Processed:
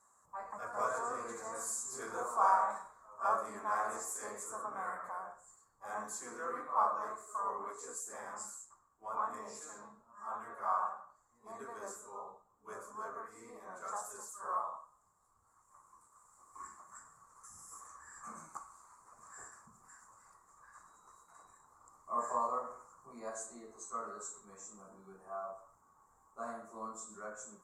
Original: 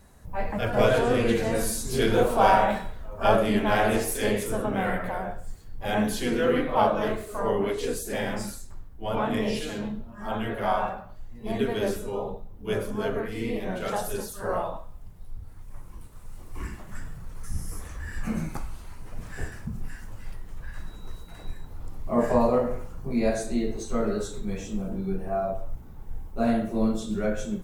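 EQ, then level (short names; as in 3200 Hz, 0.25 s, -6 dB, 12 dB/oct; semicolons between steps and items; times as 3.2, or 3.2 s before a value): double band-pass 2900 Hz, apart 2.7 oct; +2.0 dB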